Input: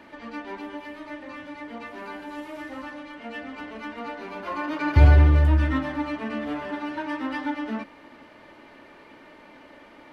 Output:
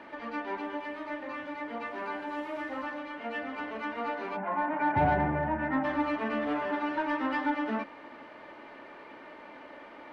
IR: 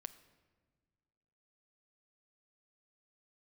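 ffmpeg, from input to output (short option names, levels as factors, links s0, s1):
-filter_complex "[0:a]asplit=3[s0][s1][s2];[s0]afade=t=out:st=4.36:d=0.02[s3];[s1]highpass=f=120:w=0.5412,highpass=f=120:w=1.3066,equalizer=f=190:t=q:w=4:g=10,equalizer=f=330:t=q:w=4:g=-7,equalizer=f=480:t=q:w=4:g=-8,equalizer=f=800:t=q:w=4:g=9,equalizer=f=1200:t=q:w=4:g=-10,lowpass=f=2000:w=0.5412,lowpass=f=2000:w=1.3066,afade=t=in:st=4.36:d=0.02,afade=t=out:st=5.83:d=0.02[s4];[s2]afade=t=in:st=5.83:d=0.02[s5];[s3][s4][s5]amix=inputs=3:normalize=0,asplit=2[s6][s7];[s7]highpass=f=720:p=1,volume=5.62,asoftclip=type=tanh:threshold=0.316[s8];[s6][s8]amix=inputs=2:normalize=0,lowpass=f=1200:p=1,volume=0.501,volume=0.668"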